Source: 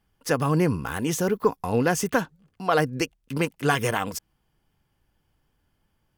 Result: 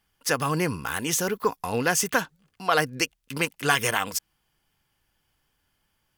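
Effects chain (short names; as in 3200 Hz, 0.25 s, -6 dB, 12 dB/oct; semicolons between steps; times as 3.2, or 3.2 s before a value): tilt shelf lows -6 dB, about 940 Hz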